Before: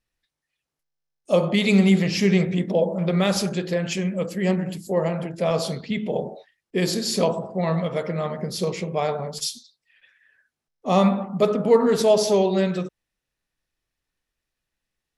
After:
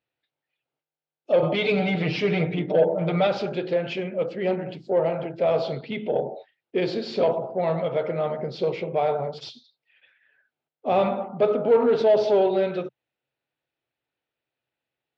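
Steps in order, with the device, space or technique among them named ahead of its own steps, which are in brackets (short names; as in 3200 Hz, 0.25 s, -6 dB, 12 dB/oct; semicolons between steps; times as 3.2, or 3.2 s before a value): overdrive pedal into a guitar cabinet (overdrive pedal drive 16 dB, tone 1200 Hz, clips at -5.5 dBFS; speaker cabinet 110–4100 Hz, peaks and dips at 130 Hz +8 dB, 190 Hz -9 dB, 1100 Hz -9 dB, 1800 Hz -8 dB); 1.42–3.27 comb 6.6 ms, depth 91%; gain -2.5 dB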